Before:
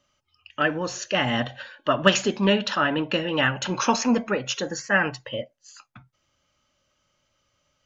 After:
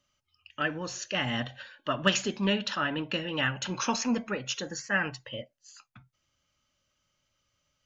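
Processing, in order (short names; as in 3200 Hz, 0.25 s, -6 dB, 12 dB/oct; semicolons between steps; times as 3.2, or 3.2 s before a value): bell 600 Hz -5.5 dB 2.6 oct; gain -4 dB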